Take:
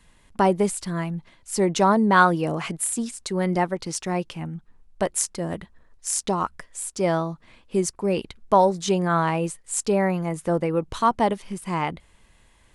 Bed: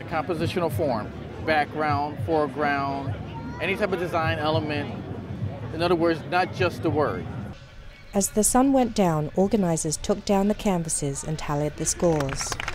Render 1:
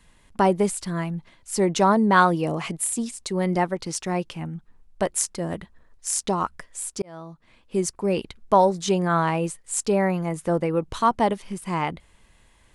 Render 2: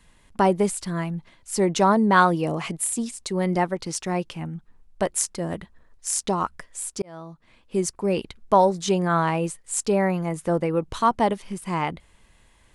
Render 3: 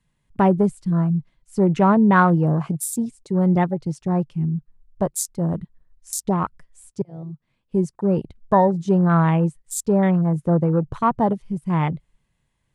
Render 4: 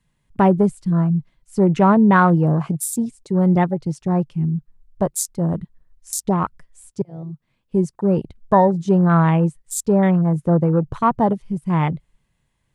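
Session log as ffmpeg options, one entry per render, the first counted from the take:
-filter_complex "[0:a]asettb=1/sr,asplit=3[a][b][c];[a]atrim=end=2.204[d];[b]atrim=start=2.2:end=3.53,asetpts=PTS-STARTPTS,afade=t=in:d=0.004:c=qsin,afade=t=out:st=1.326:d=0.004:c=qsin,equalizer=f=1.5k:w=4.1:g=-5.5[e];[c]atrim=start=3.526[f];[d][e]acrossfade=d=0.004:c1=hsin:c2=qsin[g];[g][f]acrossfade=d=0.004:c1=qsin:c2=hsin,asplit=2[h][i];[h]atrim=end=7.02,asetpts=PTS-STARTPTS,afade=t=out:st=7.016:d=0.004:c=hsin[j];[i]atrim=start=7.02,asetpts=PTS-STARTPTS,afade=t=in:d=0.89[k];[j][k]concat=n=2:v=0:a=1"
-af anull
-af "afwtdn=0.0282,equalizer=f=140:t=o:w=0.96:g=13"
-af "volume=2dB,alimiter=limit=-3dB:level=0:latency=1"

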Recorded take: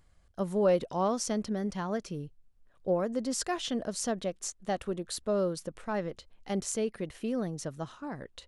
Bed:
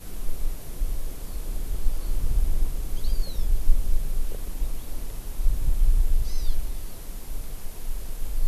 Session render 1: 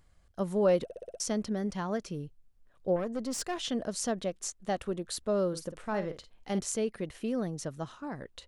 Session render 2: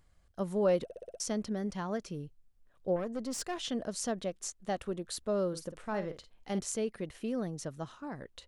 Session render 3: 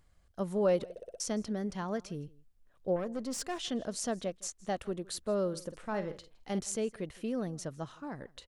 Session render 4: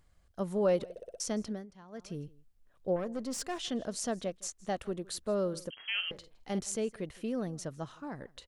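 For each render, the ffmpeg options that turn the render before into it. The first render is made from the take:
-filter_complex "[0:a]asettb=1/sr,asplit=3[a][b][c];[a]atrim=end=2.964[d];[b]atrim=start=2.96:end=3.57,asetpts=PTS-STARTPTS,afade=t=in:d=0.004:c=qsin,afade=t=out:st=0.606:d=0.004:c=qsin,aeval=exprs='(tanh(22.4*val(0)+0.4)-tanh(0.4))/22.4':c=same[e];[c]atrim=start=3.566[f];[d][e]acrossfade=d=0.004:c1=hsin:c2=qsin[g];[g][f]acrossfade=d=0.004:c1=qsin:c2=hsin,asettb=1/sr,asplit=3[h][i][j];[h]atrim=end=5.484[k];[i]atrim=start=5.48:end=6.59,asetpts=PTS-STARTPTS,afade=t=in:d=0.004:c=qsin,afade=t=out:st=1.106:d=0.004:c=qsin,asplit=2[l][m];[m]adelay=50,volume=-10.5dB[n];[l][n]amix=inputs=2:normalize=0,atrim=end_sample=48951[o];[j]atrim=start=6.586[p];[k][o]acrossfade=d=0.004:c1=hsin:c2=qsin[q];[q][p]acrossfade=d=0.004:c1=qsin:c2=hsin,asplit=7[r][s][t][u][v][w][x];[r]atrim=end=0.902[y];[s]atrim=start=0.838:end=0.902[z];[t]atrim=start=0.838:end=0.902[aa];[u]atrim=start=0.838:end=0.902[ab];[v]atrim=start=0.838:end=0.902[ac];[w]atrim=start=0.838:end=0.902[ad];[x]atrim=start=1.198[ae];[y][z]acrossfade=d=0.004:c1=hsin:c2=hsin[af];[af][aa]acrossfade=d=0.004:c1=hsin:c2=hsin[ag];[ag][ab]acrossfade=d=0.004:c1=hsin:c2=hsin[ah];[ah][ac]acrossfade=d=0.004:c1=hsin:c2=hsin[ai];[ai][ad]acrossfade=d=0.004:c1=hsin:c2=hsin[aj];[aj][ae]acrossfade=d=0.004:c1=hsin:c2=hsin"
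-af "volume=-2.5dB"
-af "aecho=1:1:163:0.0668"
-filter_complex "[0:a]asettb=1/sr,asplit=3[a][b][c];[a]atrim=end=5.704[d];[b]atrim=start=5.7:end=6.11,asetpts=PTS-STARTPTS,afade=t=in:d=0.004:c=qsin,afade=t=out:st=0.406:d=0.004:c=qsin,lowpass=f=2.8k:t=q:w=0.5098,lowpass=f=2.8k:t=q:w=0.6013,lowpass=f=2.8k:t=q:w=0.9,lowpass=f=2.8k:t=q:w=2.563,afreqshift=-3300[e];[c]atrim=start=6.106[f];[d][e]acrossfade=d=0.004:c1=hsin:c2=qsin[g];[g][f]acrossfade=d=0.004:c1=qsin:c2=hsin,asplit=3[h][i][j];[h]atrim=end=1.66,asetpts=PTS-STARTPTS,afade=t=out:st=1.4:d=0.26:c=qsin:silence=0.149624[k];[i]atrim=start=1.66:end=1.92,asetpts=PTS-STARTPTS,volume=-16.5dB[l];[j]atrim=start=1.92,asetpts=PTS-STARTPTS,afade=t=in:d=0.26:c=qsin:silence=0.149624[m];[k][l][m]concat=n=3:v=0:a=1"

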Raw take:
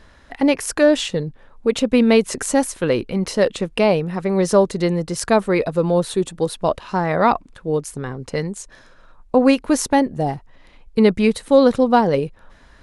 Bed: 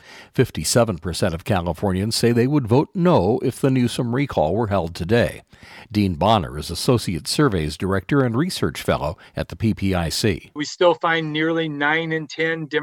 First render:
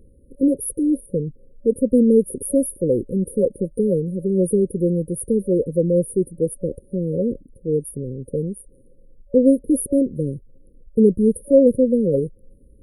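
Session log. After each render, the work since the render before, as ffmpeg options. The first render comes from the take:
-af "afftfilt=real='re*(1-between(b*sr/4096,560,9100))':imag='im*(1-between(b*sr/4096,560,9100))':win_size=4096:overlap=0.75,adynamicequalizer=threshold=0.00631:dfrequency=5300:dqfactor=0.7:tfrequency=5300:tqfactor=0.7:attack=5:release=100:ratio=0.375:range=1.5:mode=boostabove:tftype=highshelf"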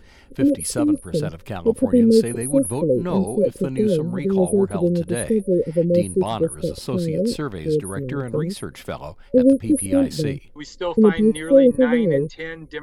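-filter_complex "[1:a]volume=-10dB[a];[0:a][a]amix=inputs=2:normalize=0"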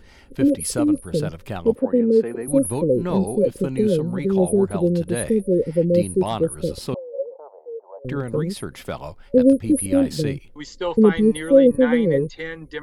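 -filter_complex "[0:a]asettb=1/sr,asplit=3[a][b][c];[a]atrim=end=1.754[d];[b]atrim=start=1.75:end=2.48,asetpts=PTS-STARTPTS,afade=t=in:d=0.004:c=qsin,afade=t=out:st=0.726:d=0.004:c=qsin,acrossover=split=230 2200:gain=0.126 1 0.112[e][f][g];[e][f][g]amix=inputs=3:normalize=0[h];[c]atrim=start=2.476[i];[d][h]acrossfade=d=0.004:c1=hsin:c2=qsin[j];[j][i]acrossfade=d=0.004:c1=qsin:c2=hsin,asettb=1/sr,asplit=3[k][l][m];[k]atrim=end=6.944[n];[l]atrim=start=6.94:end=8.05,asetpts=PTS-STARTPTS,afade=t=in:d=0.004:c=qsin,afade=t=out:st=1.106:d=0.004:c=qsin,asuperpass=centerf=700:order=8:qfactor=1.6[o];[m]atrim=start=8.046[p];[n][o]acrossfade=d=0.004:c1=hsin:c2=qsin[q];[q][p]acrossfade=d=0.004:c1=qsin:c2=hsin"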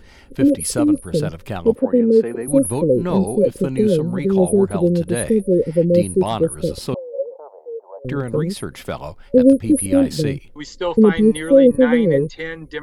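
-af "volume=3dB,alimiter=limit=-2dB:level=0:latency=1"

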